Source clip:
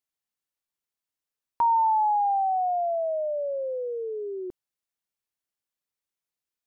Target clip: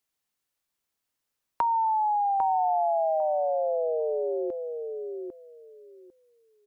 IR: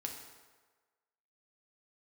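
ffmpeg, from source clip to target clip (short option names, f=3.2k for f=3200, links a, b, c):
-filter_complex "[0:a]acrossover=split=350|1000[a][b][c];[a]acompressor=threshold=-54dB:ratio=4[d];[b]acompressor=threshold=-36dB:ratio=4[e];[c]acompressor=threshold=-42dB:ratio=4[f];[d][e][f]amix=inputs=3:normalize=0,asplit=2[g][h];[h]adelay=799,lowpass=f=1.2k:p=1,volume=-4.5dB,asplit=2[i][j];[j]adelay=799,lowpass=f=1.2k:p=1,volume=0.19,asplit=2[k][l];[l]adelay=799,lowpass=f=1.2k:p=1,volume=0.19[m];[g][i][k][m]amix=inputs=4:normalize=0,volume=6.5dB"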